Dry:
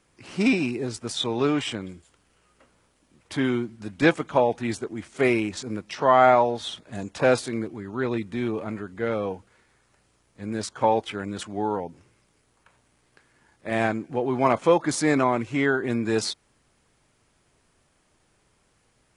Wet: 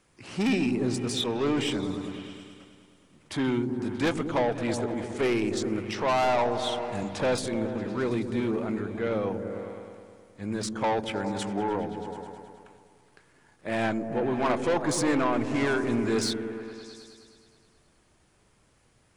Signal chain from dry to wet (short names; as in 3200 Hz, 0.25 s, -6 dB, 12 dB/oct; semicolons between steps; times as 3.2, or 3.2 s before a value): soft clip -21 dBFS, distortion -7 dB; repeats that get brighter 0.105 s, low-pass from 200 Hz, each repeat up 1 oct, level -3 dB